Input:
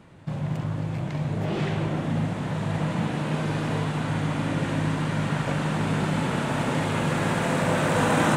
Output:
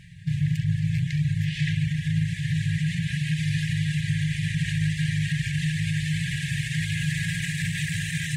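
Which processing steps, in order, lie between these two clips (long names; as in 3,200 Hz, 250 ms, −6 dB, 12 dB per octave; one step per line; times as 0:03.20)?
reverb reduction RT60 0.59 s
brickwall limiter −22 dBFS, peak gain reduction 10 dB
brick-wall band-stop 180–1,600 Hz
level +7.5 dB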